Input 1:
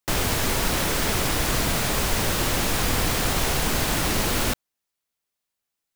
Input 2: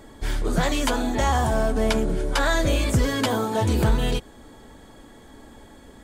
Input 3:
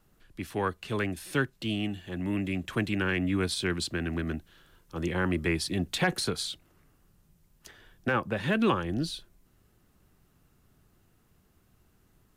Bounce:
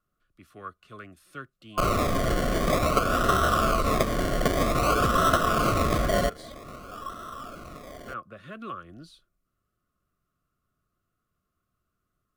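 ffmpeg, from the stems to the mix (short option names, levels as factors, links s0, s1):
-filter_complex "[0:a]asoftclip=type=hard:threshold=0.0668,adelay=1700,volume=1.33[s0];[1:a]highshelf=f=1600:t=q:w=1.5:g=14,adelay=2100,volume=0.794[s1];[2:a]volume=0.158[s2];[s0][s1]amix=inputs=2:normalize=0,acrusher=samples=27:mix=1:aa=0.000001:lfo=1:lforange=16.2:lforate=0.52,acompressor=threshold=0.0708:ratio=4,volume=1[s3];[s2][s3]amix=inputs=2:normalize=0,superequalizer=8b=1.58:9b=0.316:10b=3.55"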